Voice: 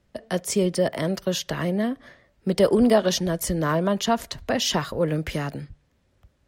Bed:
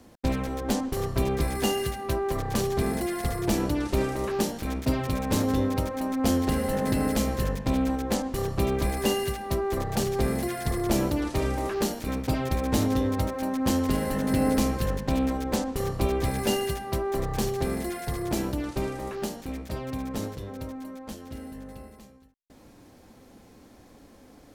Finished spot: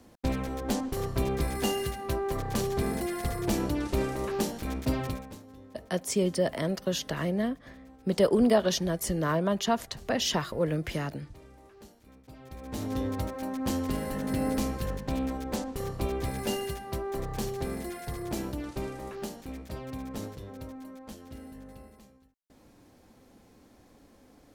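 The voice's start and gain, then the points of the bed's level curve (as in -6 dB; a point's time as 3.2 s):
5.60 s, -4.5 dB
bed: 5.07 s -3 dB
5.42 s -25.5 dB
12.24 s -25.5 dB
13 s -5.5 dB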